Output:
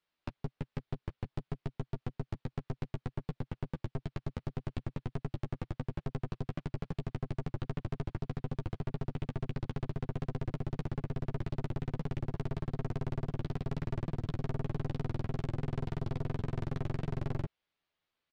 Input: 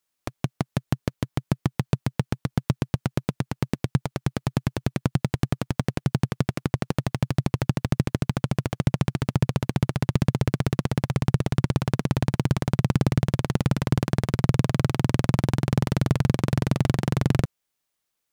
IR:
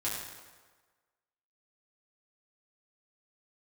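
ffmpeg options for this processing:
-filter_complex "[0:a]lowpass=frequency=4100:width=0.5412,lowpass=frequency=4100:width=1.3066,aeval=exprs='(tanh(35.5*val(0)+0.6)-tanh(0.6))/35.5':channel_layout=same,asplit=2[link_01][link_02];[link_02]adelay=12,volume=-6dB[link_03];[link_01][link_03]amix=inputs=2:normalize=0,volume=1dB"

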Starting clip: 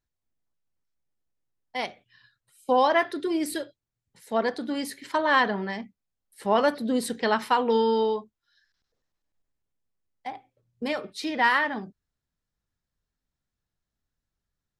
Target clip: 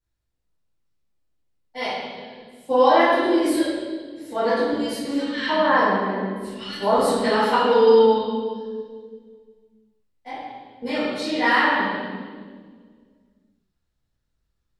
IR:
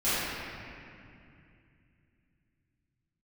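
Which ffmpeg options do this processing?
-filter_complex "[0:a]asettb=1/sr,asplit=3[link_01][link_02][link_03];[link_01]atrim=end=4.724[link_04];[link_02]atrim=start=4.72:end=6.98,asetpts=PTS-STARTPTS,afade=type=in:duration=0.004:curve=qsin,afade=type=out:start_time=2.256:duration=0.004:curve=qsin,acrossover=split=160|2000[link_05][link_06][link_07];[link_07]adelay=40[link_08];[link_06]adelay=340[link_09];[link_05][link_09][link_08]amix=inputs=3:normalize=0,atrim=end_sample=99666[link_10];[link_03]atrim=start=6.976[link_11];[link_04][link_10]acrossfade=duration=0.004:curve1=hsin:curve2=qsin[link_12];[link_12][link_11]acrossfade=duration=0.004:curve1=qsin:curve2=hsin[link_13];[1:a]atrim=start_sample=2205,asetrate=74970,aresample=44100[link_14];[link_13][link_14]afir=irnorm=-1:irlink=0,volume=-3.5dB"

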